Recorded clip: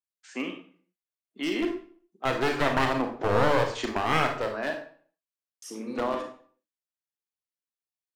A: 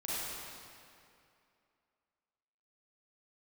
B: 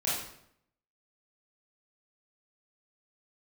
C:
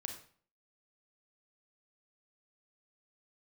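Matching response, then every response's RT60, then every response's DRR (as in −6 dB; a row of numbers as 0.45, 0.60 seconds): C; 2.5, 0.70, 0.50 seconds; −9.5, −9.0, 3.5 decibels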